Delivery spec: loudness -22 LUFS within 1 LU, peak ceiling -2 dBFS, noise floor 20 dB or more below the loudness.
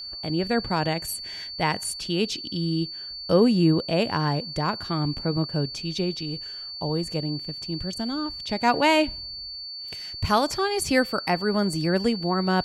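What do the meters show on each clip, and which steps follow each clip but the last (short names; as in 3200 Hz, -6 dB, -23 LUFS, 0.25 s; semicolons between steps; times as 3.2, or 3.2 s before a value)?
ticks 22/s; steady tone 4500 Hz; tone level -34 dBFS; loudness -25.5 LUFS; peak -6.5 dBFS; loudness target -22.0 LUFS
-> de-click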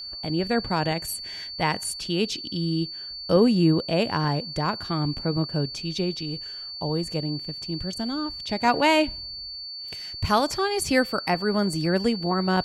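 ticks 0/s; steady tone 4500 Hz; tone level -34 dBFS
-> notch 4500 Hz, Q 30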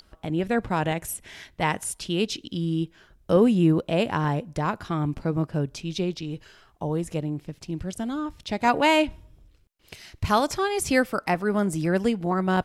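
steady tone none; loudness -25.5 LUFS; peak -6.5 dBFS; loudness target -22.0 LUFS
-> gain +3.5 dB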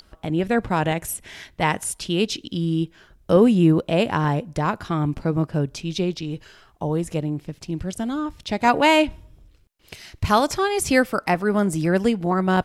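loudness -22.0 LUFS; peak -3.0 dBFS; noise floor -56 dBFS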